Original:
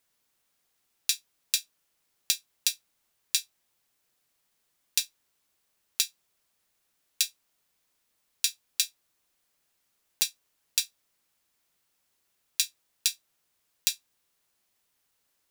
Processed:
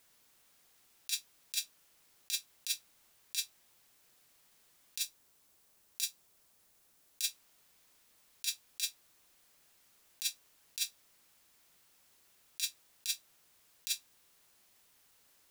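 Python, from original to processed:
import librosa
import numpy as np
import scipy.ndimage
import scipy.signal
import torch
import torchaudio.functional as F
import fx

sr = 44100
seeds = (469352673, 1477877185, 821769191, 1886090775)

y = fx.peak_eq(x, sr, hz=2500.0, db=-4.5, octaves=2.4, at=(5.01, 7.25))
y = fx.over_compress(y, sr, threshold_db=-35.0, ratio=-1.0)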